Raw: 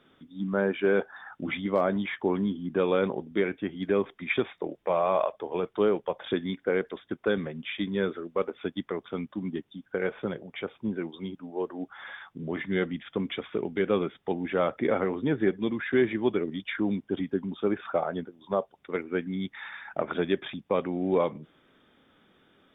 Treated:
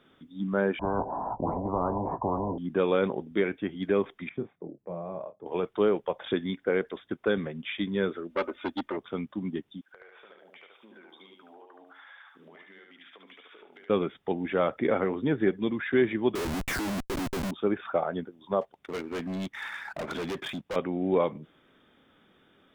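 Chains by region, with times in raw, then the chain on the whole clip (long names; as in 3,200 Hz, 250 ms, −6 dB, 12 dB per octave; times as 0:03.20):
0:00.79–0:02.58: Chebyshev low-pass with heavy ripple 1,000 Hz, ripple 3 dB + double-tracking delay 18 ms −10 dB + every bin compressed towards the loudest bin 10 to 1
0:04.29–0:05.46: resonant band-pass 150 Hz, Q 1.1 + double-tracking delay 29 ms −9 dB
0:08.30–0:08.97: comb filter 3.3 ms, depth 96% + saturating transformer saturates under 1,100 Hz
0:09.81–0:13.90: high-pass filter 700 Hz + downward compressor 20 to 1, threshold −49 dBFS + repeating echo 73 ms, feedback 31%, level −3 dB
0:16.35–0:17.51: parametric band 3,200 Hz −9 dB 1.8 octaves + comparator with hysteresis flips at −43.5 dBFS
0:18.61–0:20.76: leveller curve on the samples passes 1 + hard clipping −30.5 dBFS
whole clip: no processing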